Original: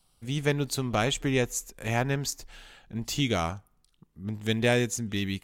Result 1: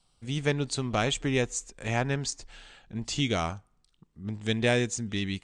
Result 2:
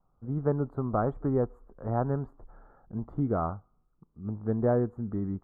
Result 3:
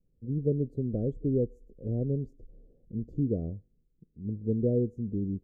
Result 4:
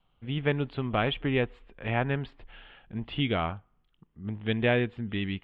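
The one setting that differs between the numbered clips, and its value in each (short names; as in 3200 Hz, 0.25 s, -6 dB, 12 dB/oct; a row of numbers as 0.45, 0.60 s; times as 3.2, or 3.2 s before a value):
elliptic low-pass, frequency: 8700, 1300, 500, 3200 Hz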